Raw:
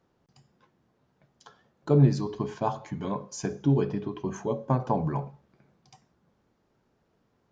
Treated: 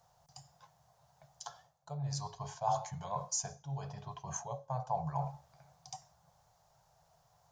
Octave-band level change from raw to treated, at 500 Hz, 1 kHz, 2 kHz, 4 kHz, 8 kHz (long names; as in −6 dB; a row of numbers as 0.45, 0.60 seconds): −13.5 dB, −3.5 dB, −10.5 dB, −0.5 dB, can't be measured